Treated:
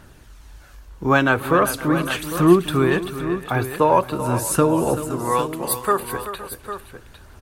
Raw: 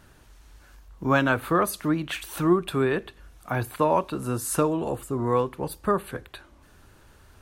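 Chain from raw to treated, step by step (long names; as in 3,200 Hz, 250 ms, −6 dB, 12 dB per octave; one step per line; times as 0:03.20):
0:05.10–0:06.00: spectral tilt +3.5 dB per octave
phase shifter 0.41 Hz, delay 2.7 ms, feedback 29%
multi-tap delay 296/384/515/804 ms −20/−12/−18/−11.5 dB
level +5 dB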